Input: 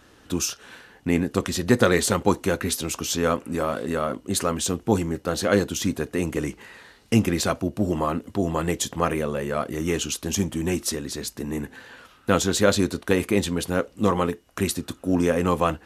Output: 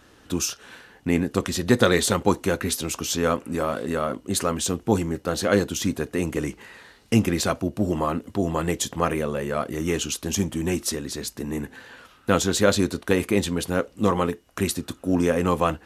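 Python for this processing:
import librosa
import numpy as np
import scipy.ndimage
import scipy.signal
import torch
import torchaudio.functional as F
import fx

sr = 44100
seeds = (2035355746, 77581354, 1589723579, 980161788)

y = fx.peak_eq(x, sr, hz=3600.0, db=6.5, octaves=0.24, at=(1.65, 2.13))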